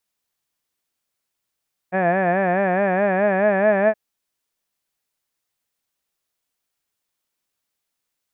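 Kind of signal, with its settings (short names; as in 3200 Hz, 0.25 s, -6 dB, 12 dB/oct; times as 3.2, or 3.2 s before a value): formant-synthesis vowel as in had, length 2.02 s, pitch 179 Hz, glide +2.5 st, vibrato 4.7 Hz, vibrato depth 1.05 st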